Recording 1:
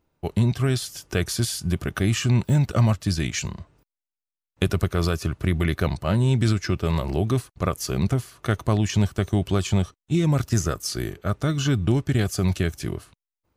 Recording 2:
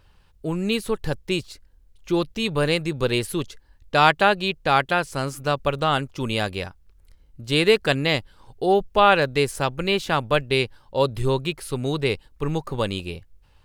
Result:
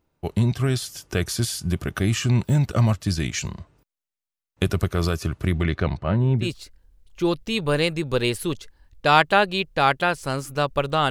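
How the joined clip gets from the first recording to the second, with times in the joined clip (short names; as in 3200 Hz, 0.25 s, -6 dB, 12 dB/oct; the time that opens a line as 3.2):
recording 1
5.52–6.5 LPF 6900 Hz -> 1100 Hz
6.44 switch to recording 2 from 1.33 s, crossfade 0.12 s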